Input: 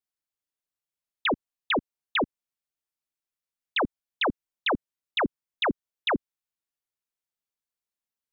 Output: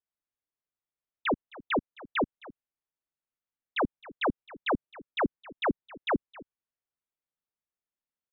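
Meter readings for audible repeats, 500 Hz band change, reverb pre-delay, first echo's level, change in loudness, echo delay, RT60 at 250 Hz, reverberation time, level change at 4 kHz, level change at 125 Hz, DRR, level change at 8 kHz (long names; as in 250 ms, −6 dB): 1, −1.0 dB, no reverb audible, −20.0 dB, −3.0 dB, 264 ms, no reverb audible, no reverb audible, −9.5 dB, −0.5 dB, no reverb audible, can't be measured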